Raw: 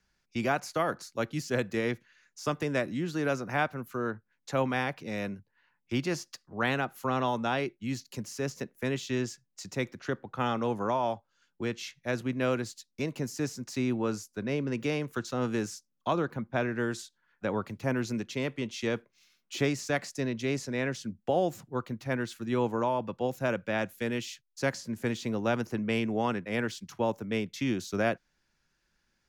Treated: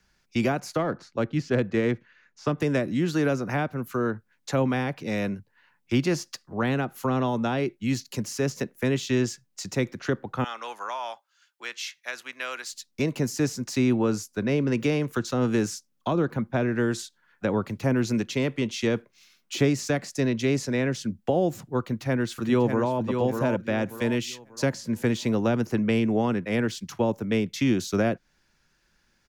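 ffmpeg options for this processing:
ffmpeg -i in.wav -filter_complex "[0:a]asettb=1/sr,asplit=3[link_01][link_02][link_03];[link_01]atrim=end=0.764[link_04];[link_02]atrim=start=0.76:end=2.58,asetpts=PTS-STARTPTS,afade=type=in:duration=0.004:curve=qsin,afade=type=out:start_time=1.816:duration=0.004:curve=qsin,adynamicsmooth=sensitivity=2.5:basefreq=3000[link_05];[link_03]atrim=start=2.576[link_06];[link_04][link_05]acrossfade=duration=0.004:curve1=hsin:curve2=qsin[link_07];[link_07][link_06]acrossfade=duration=0.004:curve1=qsin:curve2=hsin,asettb=1/sr,asplit=3[link_08][link_09][link_10];[link_08]atrim=end=10.444[link_11];[link_09]atrim=start=10.44:end=12.73,asetpts=PTS-STARTPTS,afade=type=in:duration=0.004:curve=qsin,afade=type=out:start_time=2.286:duration=0.004:curve=qsin,highpass=1300[link_12];[link_10]atrim=start=12.726[link_13];[link_11][link_12]acrossfade=duration=0.004:curve1=hsin:curve2=qsin[link_14];[link_14][link_13]acrossfade=duration=0.004:curve1=qsin:curve2=hsin,asplit=2[link_15][link_16];[link_16]afade=type=in:start_time=21.79:duration=0.01,afade=type=out:start_time=22.97:duration=0.01,aecho=0:1:590|1180|1770|2360:0.473151|0.141945|0.0425836|0.0127751[link_17];[link_15][link_17]amix=inputs=2:normalize=0,acrossover=split=470[link_18][link_19];[link_19]acompressor=threshold=-37dB:ratio=4[link_20];[link_18][link_20]amix=inputs=2:normalize=0,volume=7.5dB" out.wav

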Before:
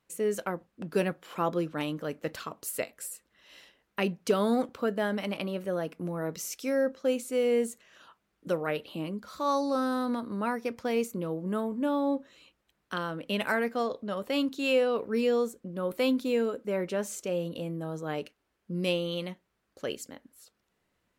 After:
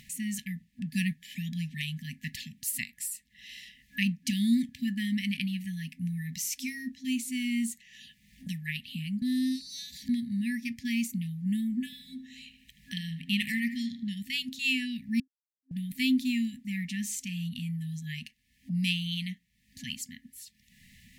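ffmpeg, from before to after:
ffmpeg -i in.wav -filter_complex "[0:a]asettb=1/sr,asplit=3[link_01][link_02][link_03];[link_01]atrim=end=11.854[link_04];[link_02]atrim=start=11.85:end=14.09,asetpts=PTS-STARTPTS,afade=type=in:duration=0.004:curve=qsin,afade=type=out:start_time=2.236:duration=0.004:curve=qsin,asplit=2[link_05][link_06];[link_06]adelay=77,lowpass=frequency=2900:poles=1,volume=-11dB,asplit=2[link_07][link_08];[link_08]adelay=77,lowpass=frequency=2900:poles=1,volume=0.55,asplit=2[link_09][link_10];[link_10]adelay=77,lowpass=frequency=2900:poles=1,volume=0.55,asplit=2[link_11][link_12];[link_12]adelay=77,lowpass=frequency=2900:poles=1,volume=0.55,asplit=2[link_13][link_14];[link_14]adelay=77,lowpass=frequency=2900:poles=1,volume=0.55,asplit=2[link_15][link_16];[link_16]adelay=77,lowpass=frequency=2900:poles=1,volume=0.55[link_17];[link_05][link_07][link_09][link_11][link_13][link_15][link_17]amix=inputs=7:normalize=0,atrim=end_sample=98784[link_18];[link_03]atrim=start=14.086[link_19];[link_04][link_18]acrossfade=duration=0.004:curve1=hsin:curve2=qsin[link_20];[link_20][link_19]acrossfade=duration=0.004:curve1=qsin:curve2=hsin,asplit=5[link_21][link_22][link_23][link_24][link_25];[link_21]atrim=end=9.222[link_26];[link_22]atrim=start=9.218:end=10.092,asetpts=PTS-STARTPTS,areverse[link_27];[link_23]atrim=start=10.088:end=15.2,asetpts=PTS-STARTPTS,afade=type=out:start_time=5.108:duration=0.004:curve=hsin[link_28];[link_24]atrim=start=15.2:end=15.71,asetpts=PTS-STARTPTS,volume=0[link_29];[link_25]atrim=start=15.71,asetpts=PTS-STARTPTS,afade=type=in:duration=0.004:curve=hsin[link_30];[link_26][link_27]acrossfade=duration=0.004:curve1=hsin:curve2=hsin[link_31];[link_28][link_29][link_30]concat=n=3:v=0:a=1[link_32];[link_31][link_32]acrossfade=duration=0.004:curve1=hsin:curve2=hsin,afftfilt=real='re*(1-between(b*sr/4096,260,1700))':imag='im*(1-between(b*sr/4096,260,1700))':win_size=4096:overlap=0.75,acompressor=mode=upward:threshold=-44dB:ratio=2.5,volume=4dB" out.wav

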